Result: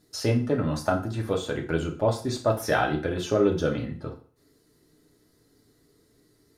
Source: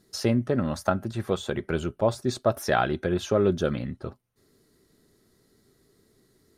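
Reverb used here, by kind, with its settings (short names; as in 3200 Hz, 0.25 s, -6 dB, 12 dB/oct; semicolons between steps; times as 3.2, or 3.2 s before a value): FDN reverb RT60 0.44 s, low-frequency decay 0.95×, high-frequency decay 0.9×, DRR 1 dB; gain -2 dB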